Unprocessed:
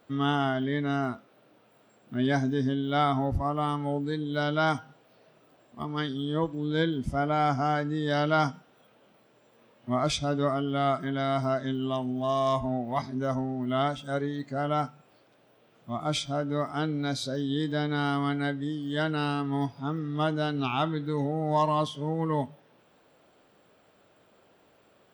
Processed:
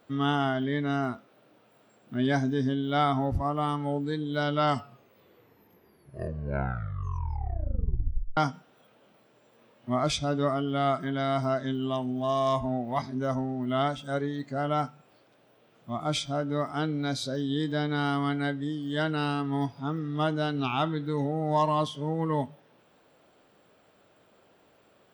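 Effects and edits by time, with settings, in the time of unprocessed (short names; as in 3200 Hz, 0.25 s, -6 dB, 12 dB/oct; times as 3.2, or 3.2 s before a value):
4.44 tape stop 3.93 s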